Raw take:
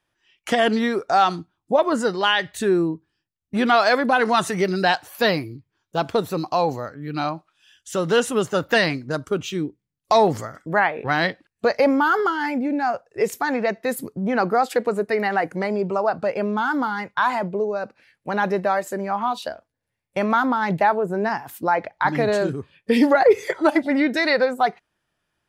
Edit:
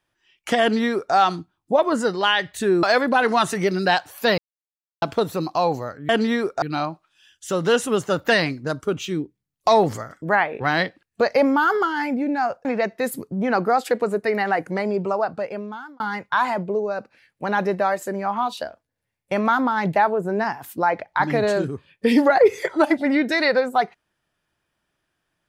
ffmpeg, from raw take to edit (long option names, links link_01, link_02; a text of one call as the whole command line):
ffmpeg -i in.wav -filter_complex "[0:a]asplit=8[link_01][link_02][link_03][link_04][link_05][link_06][link_07][link_08];[link_01]atrim=end=2.832[link_09];[link_02]atrim=start=3.798:end=5.35,asetpts=PTS-STARTPTS,afade=type=out:start_time=1.548:duration=0.004:curve=hsin[link_10];[link_03]atrim=start=5.35:end=5.99,asetpts=PTS-STARTPTS,volume=0[link_11];[link_04]atrim=start=5.99:end=7.062,asetpts=PTS-STARTPTS,afade=type=in:duration=0.004:curve=hsin[link_12];[link_05]atrim=start=0.608:end=1.142[link_13];[link_06]atrim=start=7.058:end=13.092[link_14];[link_07]atrim=start=13.498:end=16.85,asetpts=PTS-STARTPTS,afade=type=out:start_time=2.422:duration=0.93[link_15];[link_08]atrim=start=16.85,asetpts=PTS-STARTPTS,afade=type=in:duration=0.004:curve=hsin[link_16];[link_10][link_11][link_12]concat=n=3:v=0:a=1[link_17];[link_09][link_17]acrossfade=duration=0.004:curve1=hsin:curve2=hsin[link_18];[link_18][link_13]acrossfade=duration=0.004:curve1=hsin:curve2=hsin[link_19];[link_19][link_14]acrossfade=duration=0.004:curve1=hsin:curve2=hsin[link_20];[link_15][link_16]concat=n=2:v=0:a=1[link_21];[link_20][link_21]acrossfade=duration=0.004:curve1=hsin:curve2=hsin" out.wav